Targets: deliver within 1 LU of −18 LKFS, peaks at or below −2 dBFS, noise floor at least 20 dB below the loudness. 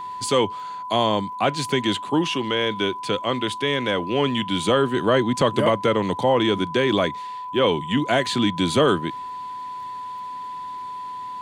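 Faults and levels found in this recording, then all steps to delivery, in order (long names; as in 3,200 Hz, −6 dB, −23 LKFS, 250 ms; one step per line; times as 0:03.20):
crackle rate 19 per second; interfering tone 1,000 Hz; level of the tone −30 dBFS; integrated loudness −22.0 LKFS; sample peak −7.5 dBFS; target loudness −18.0 LKFS
→ click removal
notch filter 1,000 Hz, Q 30
level +4 dB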